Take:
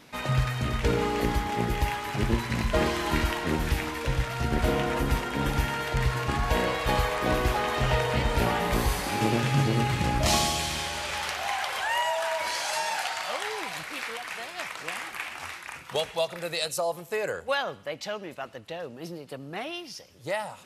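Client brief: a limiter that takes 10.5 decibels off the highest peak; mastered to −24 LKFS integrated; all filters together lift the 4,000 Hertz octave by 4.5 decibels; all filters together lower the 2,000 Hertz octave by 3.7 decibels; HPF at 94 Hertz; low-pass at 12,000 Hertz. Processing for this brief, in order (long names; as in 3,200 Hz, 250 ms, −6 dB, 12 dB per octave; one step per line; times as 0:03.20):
high-pass filter 94 Hz
low-pass filter 12,000 Hz
parametric band 2,000 Hz −7 dB
parametric band 4,000 Hz +8 dB
level +6.5 dB
brickwall limiter −13 dBFS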